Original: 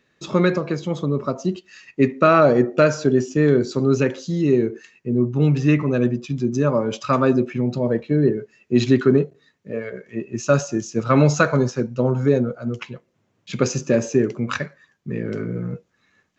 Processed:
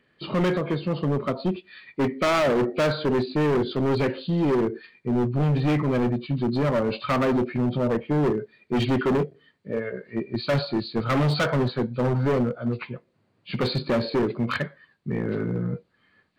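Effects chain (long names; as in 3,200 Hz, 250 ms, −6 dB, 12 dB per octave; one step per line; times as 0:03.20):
hearing-aid frequency compression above 2,000 Hz 1.5 to 1
hard clipping −19 dBFS, distortion −6 dB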